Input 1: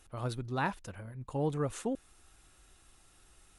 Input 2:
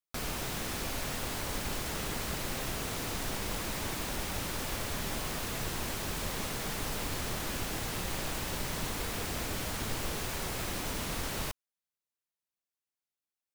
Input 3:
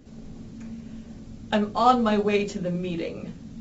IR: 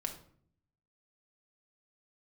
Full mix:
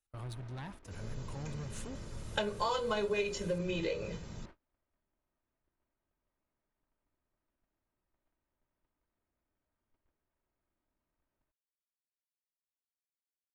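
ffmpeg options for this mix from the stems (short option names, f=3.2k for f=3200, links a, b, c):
-filter_complex "[0:a]acrossover=split=150[a][b];[b]acompressor=threshold=-53dB:ratio=2[c];[a][c]amix=inputs=2:normalize=0,asoftclip=type=tanh:threshold=-40dB,volume=1dB[d];[1:a]lowpass=1.7k,aecho=1:1:3.2:0.38,asoftclip=type=tanh:threshold=-34dB,volume=-15dB[e];[2:a]aecho=1:1:2:0.93,adelay=850,volume=-4.5dB[f];[d][f]amix=inputs=2:normalize=0,highshelf=f=2.2k:g=6,acompressor=threshold=-31dB:ratio=4,volume=0dB[g];[e][g]amix=inputs=2:normalize=0,agate=range=-33dB:threshold=-49dB:ratio=16:detection=peak"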